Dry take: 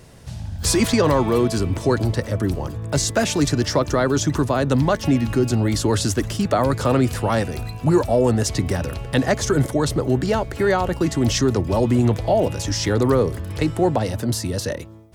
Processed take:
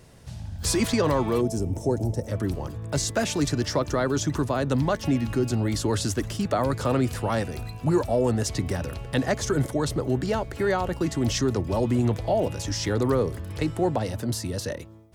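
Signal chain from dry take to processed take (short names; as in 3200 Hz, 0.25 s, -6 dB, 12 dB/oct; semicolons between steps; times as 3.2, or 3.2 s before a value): spectral gain 1.41–2.28, 940–5100 Hz -15 dB; gain -5.5 dB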